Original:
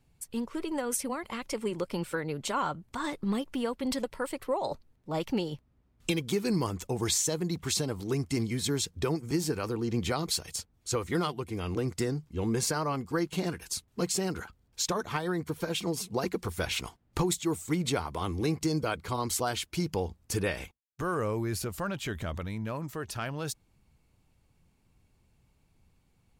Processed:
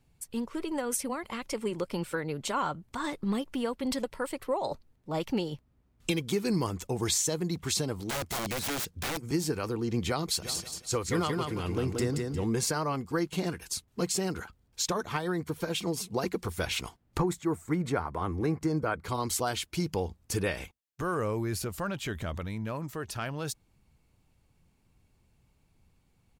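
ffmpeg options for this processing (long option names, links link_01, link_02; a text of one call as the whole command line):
ffmpeg -i in.wav -filter_complex "[0:a]asettb=1/sr,asplit=3[link_01][link_02][link_03];[link_01]atrim=end=8.034[link_04];[link_02]atrim=start=8.03:end=9.19,asetpts=PTS-STARTPTS,afade=type=in:duration=0.004:curve=qsin,afade=type=out:start_time=1.156:duration=0.004:curve=qsin,aeval=exprs='(mod(23.7*val(0)+1,2)-1)/23.7':channel_layout=same[link_05];[link_03]atrim=start=9.186[link_06];[link_04][link_05]acrossfade=duration=0.004:curve1=hsin:curve2=qsin[link_07];[link_07][link_06]acrossfade=duration=0.004:curve1=qsin:curve2=hsin,asplit=3[link_08][link_09][link_10];[link_08]afade=type=out:start_time=10.42:duration=0.02[link_11];[link_09]aecho=1:1:178|356|534|712:0.631|0.208|0.0687|0.0227,afade=type=in:start_time=10.42:duration=0.02,afade=type=out:start_time=12.44:duration=0.02[link_12];[link_10]afade=type=in:start_time=12.44:duration=0.02[link_13];[link_11][link_12][link_13]amix=inputs=3:normalize=0,asettb=1/sr,asplit=3[link_14][link_15][link_16];[link_14]atrim=end=17.184[link_17];[link_15]atrim=start=17.18:end=19.04,asetpts=PTS-STARTPTS,afade=type=in:duration=0.004:curve=qsin,afade=type=out:start_time=1.856:duration=0.004:curve=qsin,highshelf=frequency=2300:width_type=q:width=1.5:gain=-9.5[link_18];[link_16]atrim=start=19.036[link_19];[link_17][link_18]acrossfade=duration=0.004:curve1=hsin:curve2=qsin[link_20];[link_20][link_19]acrossfade=duration=0.004:curve1=qsin:curve2=hsin" out.wav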